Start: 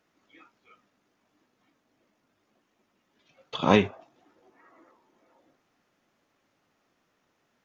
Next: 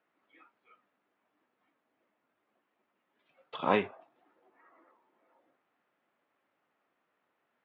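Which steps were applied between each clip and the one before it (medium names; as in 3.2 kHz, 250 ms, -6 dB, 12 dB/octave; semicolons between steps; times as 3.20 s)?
high-pass 720 Hz 6 dB/octave; distance through air 470 m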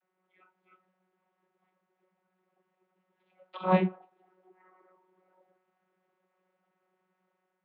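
vocoder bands 32, saw 185 Hz; level rider gain up to 4.5 dB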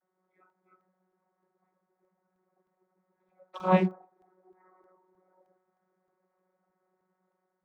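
local Wiener filter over 15 samples; crackling interface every 0.31 s, samples 64, zero, from 0.50 s; trim +1.5 dB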